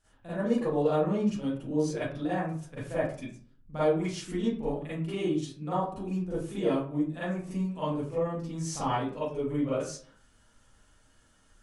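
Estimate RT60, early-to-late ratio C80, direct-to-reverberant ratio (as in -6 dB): 0.45 s, 5.5 dB, -12.5 dB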